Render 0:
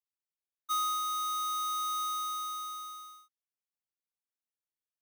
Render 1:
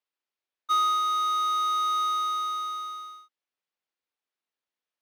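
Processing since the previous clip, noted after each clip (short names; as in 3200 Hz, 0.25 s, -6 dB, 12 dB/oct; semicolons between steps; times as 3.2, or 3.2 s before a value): three-band isolator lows -24 dB, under 210 Hz, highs -18 dB, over 4900 Hz; gain +8 dB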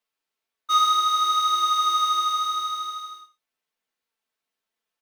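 comb 4.5 ms, depth 41%; flange 0.63 Hz, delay 8.3 ms, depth 8.1 ms, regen +34%; non-linear reverb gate 0.12 s flat, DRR 10 dB; gain +8.5 dB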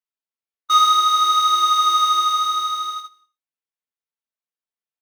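gate -34 dBFS, range -19 dB; gain +5 dB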